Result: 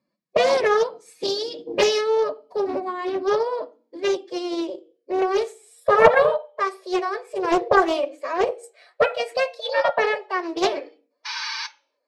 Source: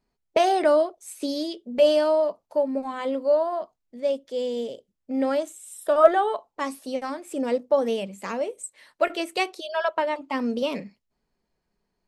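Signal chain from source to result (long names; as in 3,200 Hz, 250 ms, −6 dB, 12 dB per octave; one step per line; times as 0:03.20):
parametric band 200 Hz +4.5 dB 2.4 octaves
hum removal 165.5 Hz, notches 3
high-pass filter sweep 130 Hz → 520 Hz, 0:02.79–0:06.60
sound drawn into the spectrogram noise, 0:11.25–0:11.67, 590–6,400 Hz −28 dBFS
phase-vocoder pitch shift with formants kept +6 semitones
high-frequency loss of the air 57 metres
convolution reverb RT60 0.40 s, pre-delay 3 ms, DRR 12 dB
highs frequency-modulated by the lows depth 0.27 ms
level −2 dB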